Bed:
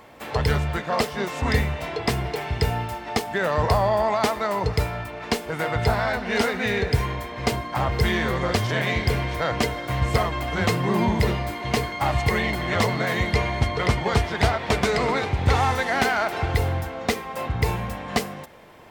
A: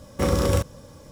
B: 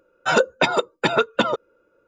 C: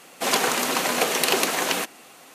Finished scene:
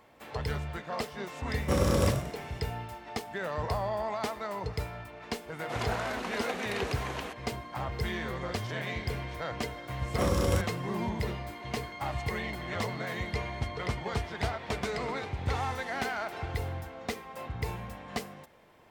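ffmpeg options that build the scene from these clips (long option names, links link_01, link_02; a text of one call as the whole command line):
ffmpeg -i bed.wav -i cue0.wav -i cue1.wav -i cue2.wav -filter_complex "[1:a]asplit=2[link_01][link_02];[0:a]volume=-11.5dB[link_03];[link_01]asplit=5[link_04][link_05][link_06][link_07][link_08];[link_05]adelay=96,afreqshift=38,volume=-7.5dB[link_09];[link_06]adelay=192,afreqshift=76,volume=-16.4dB[link_10];[link_07]adelay=288,afreqshift=114,volume=-25.2dB[link_11];[link_08]adelay=384,afreqshift=152,volume=-34.1dB[link_12];[link_04][link_09][link_10][link_11][link_12]amix=inputs=5:normalize=0[link_13];[3:a]aemphasis=mode=reproduction:type=75fm[link_14];[link_13]atrim=end=1.11,asetpts=PTS-STARTPTS,volume=-5dB,afade=type=in:duration=0.004:curve=hsin,afade=type=out:start_time=1.106:duration=0.004:curve=hsin,adelay=1490[link_15];[link_14]atrim=end=2.34,asetpts=PTS-STARTPTS,volume=-12.5dB,afade=type=in:duration=0.004:curve=hsin,afade=type=out:start_time=2.336:duration=0.004:curve=hsin,adelay=5480[link_16];[link_02]atrim=end=1.11,asetpts=PTS-STARTPTS,volume=-6dB,afade=type=in:duration=0.004:curve=hsin,afade=type=out:start_time=1.106:duration=0.004:curve=hsin,adelay=9990[link_17];[link_03][link_15][link_16][link_17]amix=inputs=4:normalize=0" out.wav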